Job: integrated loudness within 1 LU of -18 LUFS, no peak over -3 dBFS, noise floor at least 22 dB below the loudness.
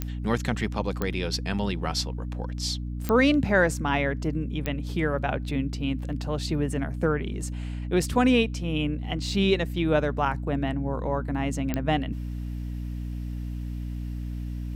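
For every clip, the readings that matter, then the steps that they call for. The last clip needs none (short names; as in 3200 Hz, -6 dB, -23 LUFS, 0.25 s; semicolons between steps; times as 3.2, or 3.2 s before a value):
clicks 5; hum 60 Hz; harmonics up to 300 Hz; hum level -30 dBFS; loudness -27.5 LUFS; peak -10.0 dBFS; loudness target -18.0 LUFS
-> de-click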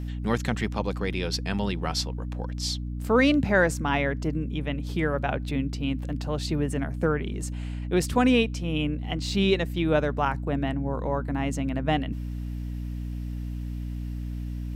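clicks 0; hum 60 Hz; harmonics up to 300 Hz; hum level -30 dBFS
-> de-hum 60 Hz, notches 5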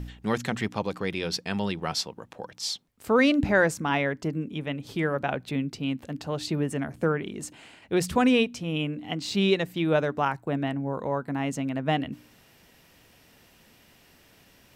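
hum none; loudness -27.5 LUFS; peak -10.5 dBFS; loudness target -18.0 LUFS
-> gain +9.5 dB; limiter -3 dBFS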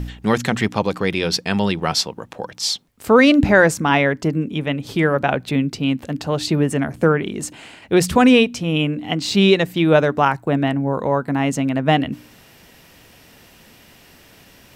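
loudness -18.0 LUFS; peak -3.0 dBFS; noise floor -49 dBFS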